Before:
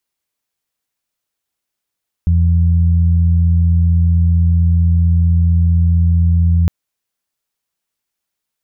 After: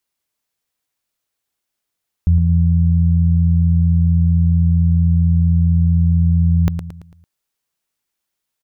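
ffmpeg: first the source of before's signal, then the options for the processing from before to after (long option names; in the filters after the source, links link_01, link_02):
-f lavfi -i "aevalsrc='0.355*sin(2*PI*84.4*t)+0.119*sin(2*PI*168.8*t)':duration=4.41:sample_rate=44100"
-af "aecho=1:1:112|224|336|448|560:0.376|0.165|0.0728|0.032|0.0141"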